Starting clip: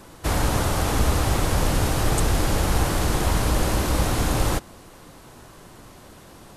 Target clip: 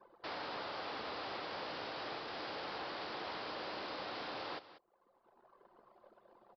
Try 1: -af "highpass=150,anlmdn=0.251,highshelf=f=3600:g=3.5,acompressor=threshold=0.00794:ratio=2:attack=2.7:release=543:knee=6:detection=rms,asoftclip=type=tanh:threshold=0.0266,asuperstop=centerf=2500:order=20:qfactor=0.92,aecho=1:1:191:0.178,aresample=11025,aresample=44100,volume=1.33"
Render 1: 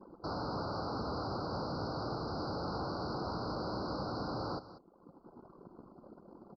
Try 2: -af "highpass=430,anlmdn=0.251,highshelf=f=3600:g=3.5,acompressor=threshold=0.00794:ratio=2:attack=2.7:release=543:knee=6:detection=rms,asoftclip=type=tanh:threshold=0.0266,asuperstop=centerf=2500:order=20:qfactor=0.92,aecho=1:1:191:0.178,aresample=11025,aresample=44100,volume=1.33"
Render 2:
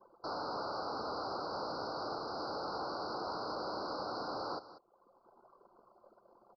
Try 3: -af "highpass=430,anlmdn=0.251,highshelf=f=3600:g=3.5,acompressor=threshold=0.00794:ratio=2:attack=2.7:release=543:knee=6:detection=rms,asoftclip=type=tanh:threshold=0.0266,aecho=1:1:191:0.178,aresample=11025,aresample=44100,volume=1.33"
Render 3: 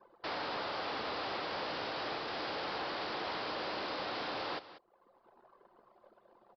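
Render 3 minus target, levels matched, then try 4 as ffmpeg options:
compression: peak gain reduction -6 dB
-af "highpass=430,anlmdn=0.251,highshelf=f=3600:g=3.5,acompressor=threshold=0.00211:ratio=2:attack=2.7:release=543:knee=6:detection=rms,asoftclip=type=tanh:threshold=0.0266,aecho=1:1:191:0.178,aresample=11025,aresample=44100,volume=1.33"

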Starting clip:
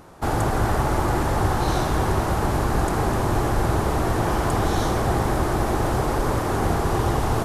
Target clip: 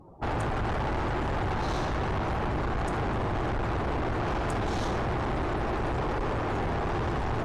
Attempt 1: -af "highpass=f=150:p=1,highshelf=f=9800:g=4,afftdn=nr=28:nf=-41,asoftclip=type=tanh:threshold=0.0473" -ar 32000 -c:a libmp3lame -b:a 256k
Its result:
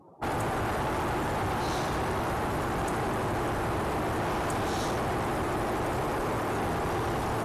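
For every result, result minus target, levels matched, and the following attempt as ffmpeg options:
8 kHz band +8.0 dB; 125 Hz band -3.0 dB
-af "highpass=f=150:p=1,highshelf=f=9800:g=-6.5,afftdn=nr=28:nf=-41,asoftclip=type=tanh:threshold=0.0473" -ar 32000 -c:a libmp3lame -b:a 256k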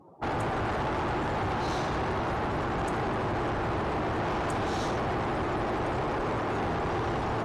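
125 Hz band -3.0 dB
-af "highshelf=f=9800:g=-6.5,afftdn=nr=28:nf=-41,asoftclip=type=tanh:threshold=0.0473" -ar 32000 -c:a libmp3lame -b:a 256k

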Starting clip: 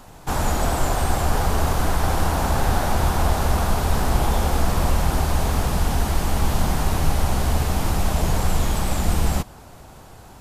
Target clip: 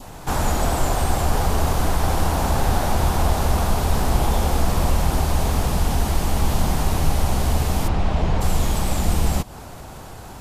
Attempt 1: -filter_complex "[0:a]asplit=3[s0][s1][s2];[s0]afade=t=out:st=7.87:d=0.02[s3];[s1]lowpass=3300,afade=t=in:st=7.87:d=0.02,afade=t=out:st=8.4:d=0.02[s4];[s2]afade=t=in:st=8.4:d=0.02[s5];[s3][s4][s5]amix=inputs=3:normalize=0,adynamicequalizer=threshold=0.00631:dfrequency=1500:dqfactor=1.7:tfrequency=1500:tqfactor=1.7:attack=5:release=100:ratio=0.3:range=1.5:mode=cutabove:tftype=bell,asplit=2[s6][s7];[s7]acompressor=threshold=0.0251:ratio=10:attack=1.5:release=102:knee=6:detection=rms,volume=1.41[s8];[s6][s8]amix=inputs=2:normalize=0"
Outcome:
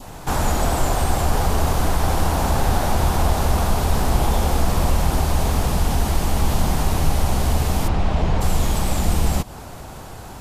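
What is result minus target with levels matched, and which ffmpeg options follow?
compression: peak gain reduction -6.5 dB
-filter_complex "[0:a]asplit=3[s0][s1][s2];[s0]afade=t=out:st=7.87:d=0.02[s3];[s1]lowpass=3300,afade=t=in:st=7.87:d=0.02,afade=t=out:st=8.4:d=0.02[s4];[s2]afade=t=in:st=8.4:d=0.02[s5];[s3][s4][s5]amix=inputs=3:normalize=0,adynamicequalizer=threshold=0.00631:dfrequency=1500:dqfactor=1.7:tfrequency=1500:tqfactor=1.7:attack=5:release=100:ratio=0.3:range=1.5:mode=cutabove:tftype=bell,asplit=2[s6][s7];[s7]acompressor=threshold=0.0112:ratio=10:attack=1.5:release=102:knee=6:detection=rms,volume=1.41[s8];[s6][s8]amix=inputs=2:normalize=0"

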